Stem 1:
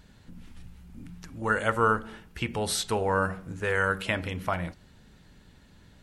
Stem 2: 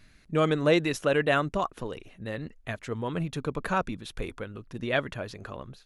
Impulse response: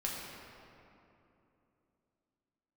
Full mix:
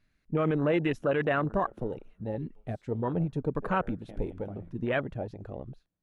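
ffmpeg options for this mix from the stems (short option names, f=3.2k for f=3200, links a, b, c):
-filter_complex "[0:a]acompressor=threshold=-35dB:ratio=2,adynamicequalizer=threshold=0.00355:dfrequency=330:dqfactor=0.7:tfrequency=330:tqfactor=0.7:attack=5:release=100:ratio=0.375:range=3.5:mode=boostabove:tftype=bell,volume=-4.5dB,afade=t=out:st=1.25:d=0.69:silence=0.398107,afade=t=in:st=3.39:d=0.75:silence=0.354813,asplit=2[a][b];[b]volume=-11dB[c];[1:a]volume=2dB,asplit=2[d][e];[e]apad=whole_len=265602[f];[a][f]sidechaingate=range=-33dB:threshold=-47dB:ratio=16:detection=peak[g];[2:a]atrim=start_sample=2205[h];[c][h]afir=irnorm=-1:irlink=0[i];[g][d][i]amix=inputs=3:normalize=0,afwtdn=0.0282,highshelf=f=3.8k:g=-7,alimiter=limit=-18dB:level=0:latency=1:release=20"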